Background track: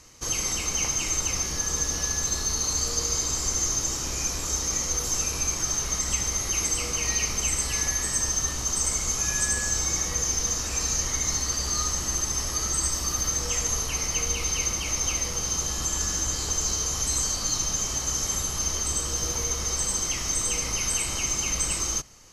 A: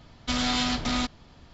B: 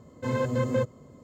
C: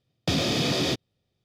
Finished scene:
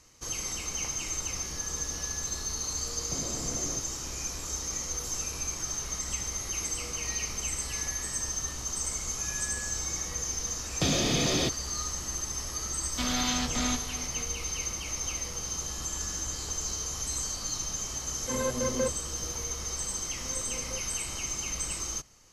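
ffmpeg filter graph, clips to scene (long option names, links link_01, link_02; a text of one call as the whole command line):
ffmpeg -i bed.wav -i cue0.wav -i cue1.wav -i cue2.wav -filter_complex "[3:a]asplit=2[link_01][link_02];[2:a]asplit=2[link_03][link_04];[0:a]volume=-7dB[link_05];[link_01]lowpass=1100[link_06];[1:a]aecho=1:1:613:0.2[link_07];[link_03]highpass=210[link_08];[link_04]highpass=230[link_09];[link_06]atrim=end=1.44,asetpts=PTS-STARTPTS,volume=-13.5dB,afade=type=in:duration=0.004:curve=hsin,afade=type=out:start_time=1.436:duration=0.004:curve=hsin,adelay=2840[link_10];[link_02]atrim=end=1.44,asetpts=PTS-STARTPTS,volume=-2.5dB,afade=type=in:duration=0.004:curve=hsin,afade=type=out:start_time=1.436:duration=0.004:curve=hsin,adelay=10540[link_11];[link_07]atrim=end=1.53,asetpts=PTS-STARTPTS,volume=-4dB,afade=type=in:duration=0.004:curve=hsin,afade=type=out:start_time=1.526:duration=0.004:curve=hsin,adelay=12700[link_12];[link_08]atrim=end=1.23,asetpts=PTS-STARTPTS,volume=-2.5dB,afade=type=in:duration=0.004:curve=hsin,afade=type=out:start_time=1.226:duration=0.004:curve=hsin,adelay=18050[link_13];[link_09]atrim=end=1.23,asetpts=PTS-STARTPTS,volume=-17.5dB,afade=type=in:duration=0.004:curve=hsin,afade=type=out:start_time=1.226:duration=0.004:curve=hsin,adelay=19960[link_14];[link_05][link_10][link_11][link_12][link_13][link_14]amix=inputs=6:normalize=0" out.wav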